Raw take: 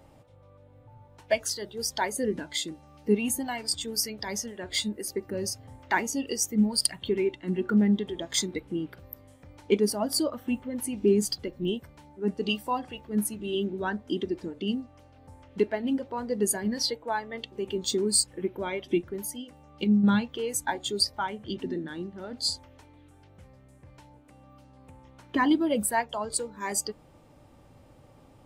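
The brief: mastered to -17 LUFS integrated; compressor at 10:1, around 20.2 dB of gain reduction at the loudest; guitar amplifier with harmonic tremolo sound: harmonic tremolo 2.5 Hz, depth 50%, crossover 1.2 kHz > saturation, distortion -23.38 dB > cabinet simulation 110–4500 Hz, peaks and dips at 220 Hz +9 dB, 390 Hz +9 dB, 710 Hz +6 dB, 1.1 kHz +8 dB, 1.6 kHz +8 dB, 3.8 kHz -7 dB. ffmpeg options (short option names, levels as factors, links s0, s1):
-filter_complex "[0:a]acompressor=threshold=0.0112:ratio=10,acrossover=split=1200[s0][s1];[s0]aeval=exprs='val(0)*(1-0.5/2+0.5/2*cos(2*PI*2.5*n/s))':c=same[s2];[s1]aeval=exprs='val(0)*(1-0.5/2-0.5/2*cos(2*PI*2.5*n/s))':c=same[s3];[s2][s3]amix=inputs=2:normalize=0,asoftclip=threshold=0.0251,highpass=110,equalizer=f=220:t=q:w=4:g=9,equalizer=f=390:t=q:w=4:g=9,equalizer=f=710:t=q:w=4:g=6,equalizer=f=1100:t=q:w=4:g=8,equalizer=f=1600:t=q:w=4:g=8,equalizer=f=3800:t=q:w=4:g=-7,lowpass=f=4500:w=0.5412,lowpass=f=4500:w=1.3066,volume=15.8"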